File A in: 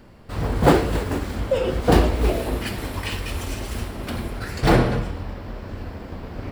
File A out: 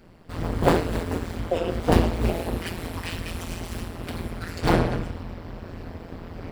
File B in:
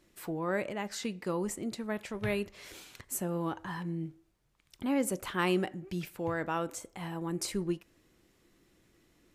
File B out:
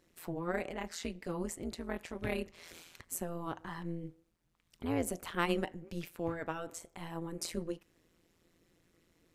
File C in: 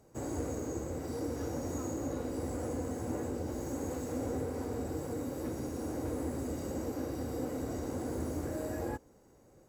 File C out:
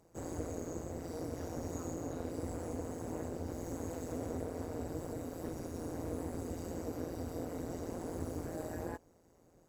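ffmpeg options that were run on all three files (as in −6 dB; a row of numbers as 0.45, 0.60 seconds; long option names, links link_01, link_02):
-af "tremolo=f=170:d=0.919"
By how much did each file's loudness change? −3.5, −4.0, −4.0 LU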